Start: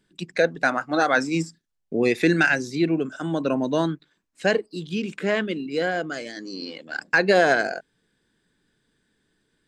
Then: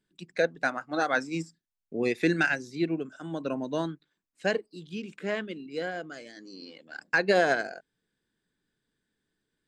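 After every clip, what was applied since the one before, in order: upward expansion 1.5:1, over -28 dBFS; trim -4.5 dB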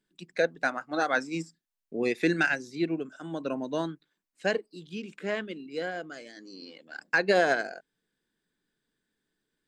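peaking EQ 87 Hz -10 dB 1 oct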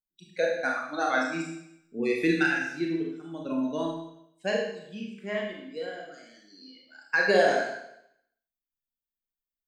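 expander on every frequency bin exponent 1.5; Schroeder reverb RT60 0.76 s, combs from 27 ms, DRR -1.5 dB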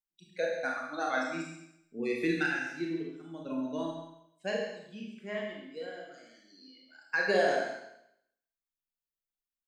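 delay 136 ms -10 dB; trim -5.5 dB

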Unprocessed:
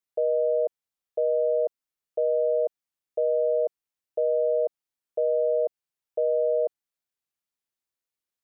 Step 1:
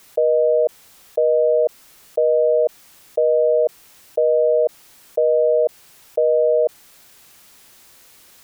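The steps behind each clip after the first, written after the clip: level flattener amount 50%; trim +7.5 dB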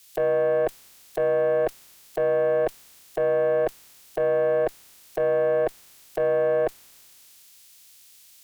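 spectral peaks clipped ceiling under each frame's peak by 23 dB; valve stage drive 16 dB, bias 0.25; three bands expanded up and down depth 40%; trim -1 dB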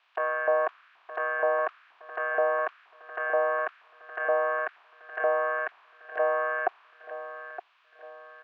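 LFO high-pass saw up 2.1 Hz 790–1600 Hz; cabinet simulation 380–2100 Hz, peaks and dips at 520 Hz -10 dB, 850 Hz -9 dB, 1.4 kHz -4 dB, 2 kHz -9 dB; feedback delay 917 ms, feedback 40%, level -12.5 dB; trim +7 dB

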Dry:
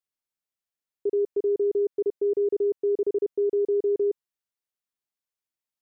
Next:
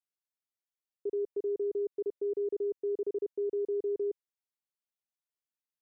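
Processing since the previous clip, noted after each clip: high-pass 100 Hz 6 dB/octave; trim -8 dB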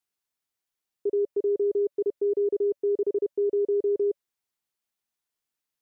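band-stop 570 Hz, Q 12; trim +7.5 dB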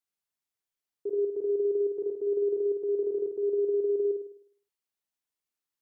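flutter echo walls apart 8.9 m, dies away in 0.59 s; trim -6 dB

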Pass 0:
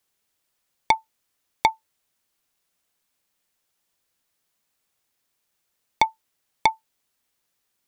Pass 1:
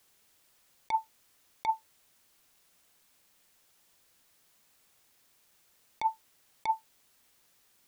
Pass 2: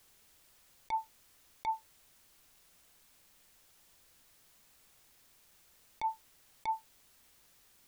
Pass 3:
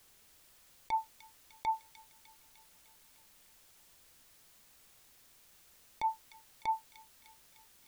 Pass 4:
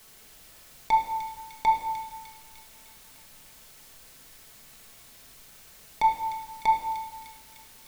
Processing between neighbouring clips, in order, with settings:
compressor with a negative ratio -29 dBFS, ratio -1
bass shelf 76 Hz +11 dB; peak limiter -28.5 dBFS, peak gain reduction 9.5 dB; trim +2 dB
feedback echo behind a high-pass 302 ms, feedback 63%, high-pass 2.6 kHz, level -9 dB; trim +1.5 dB
simulated room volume 860 m³, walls mixed, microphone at 1.5 m; trim +9 dB

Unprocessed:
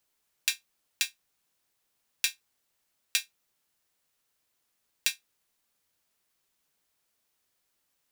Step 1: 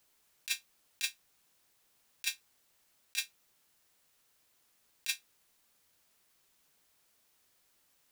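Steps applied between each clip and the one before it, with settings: compressor with a negative ratio -32 dBFS, ratio -0.5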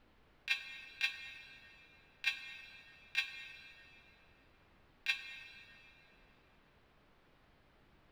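added noise pink -76 dBFS; distance through air 390 m; plate-style reverb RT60 3.2 s, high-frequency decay 0.75×, DRR 7 dB; trim +8.5 dB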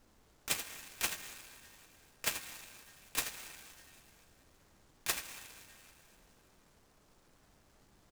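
delay 82 ms -9.5 dB; delay time shaken by noise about 4.7 kHz, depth 0.091 ms; trim +1 dB

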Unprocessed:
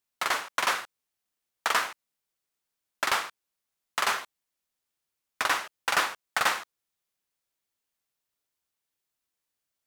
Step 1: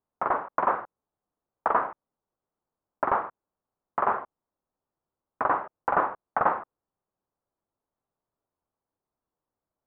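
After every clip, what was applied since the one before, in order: low-pass 1.1 kHz 24 dB/octave; trim +7.5 dB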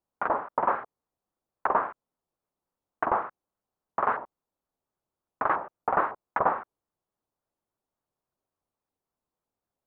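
vibrato with a chosen wave saw up 3.6 Hz, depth 250 cents; trim -1 dB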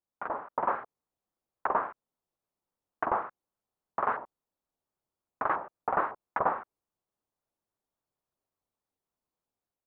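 level rider gain up to 5.5 dB; trim -8.5 dB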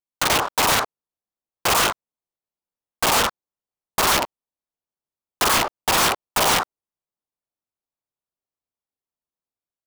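waveshaping leveller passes 5; integer overflow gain 17 dB; trim +2.5 dB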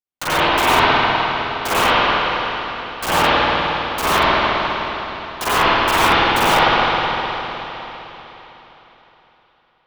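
reverberation RT60 3.9 s, pre-delay 51 ms, DRR -14 dB; trim -6.5 dB

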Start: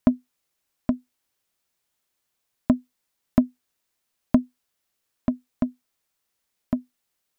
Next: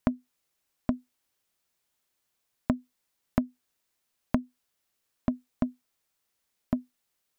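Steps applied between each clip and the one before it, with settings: compression 6:1, threshold -21 dBFS, peak gain reduction 9 dB; trim -1 dB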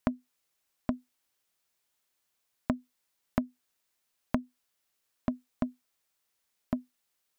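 bass shelf 430 Hz -4.5 dB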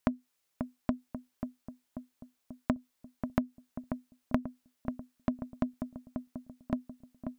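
filtered feedback delay 538 ms, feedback 58%, low-pass 1.1 kHz, level -6.5 dB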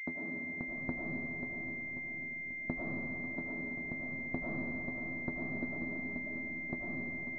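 cycle switcher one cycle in 3, muted; algorithmic reverb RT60 3 s, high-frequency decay 0.5×, pre-delay 60 ms, DRR -3.5 dB; class-D stage that switches slowly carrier 2.1 kHz; trim -7.5 dB

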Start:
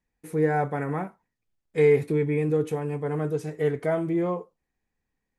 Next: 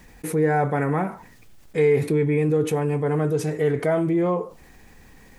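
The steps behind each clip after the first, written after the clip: level flattener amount 50%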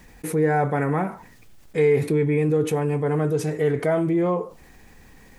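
no audible change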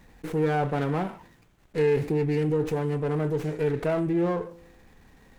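feedback comb 170 Hz, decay 1 s, harmonics all, mix 40%; sliding maximum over 9 samples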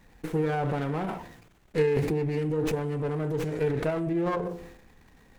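de-hum 59.7 Hz, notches 13; transient shaper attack +7 dB, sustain +11 dB; trim -4 dB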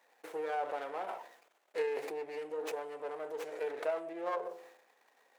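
ladder high-pass 470 Hz, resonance 35%

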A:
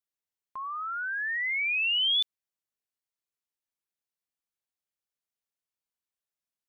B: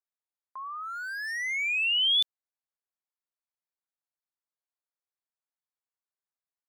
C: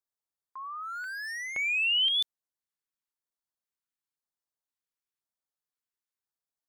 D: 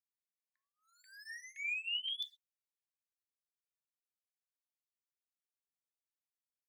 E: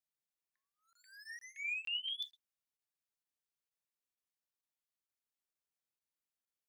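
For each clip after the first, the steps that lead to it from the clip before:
local Wiener filter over 15 samples; high-pass 630 Hz; treble shelf 5.5 kHz +9.5 dB
LFO notch square 0.96 Hz 640–2500 Hz
rippled Chebyshev high-pass 1.7 kHz, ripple 3 dB; gated-style reverb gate 150 ms falling, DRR 9 dB; cancelling through-zero flanger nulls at 0.69 Hz, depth 1.6 ms; trim -8 dB
crackling interface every 0.46 s, samples 1024, zero, from 0.93 s; trim -1 dB

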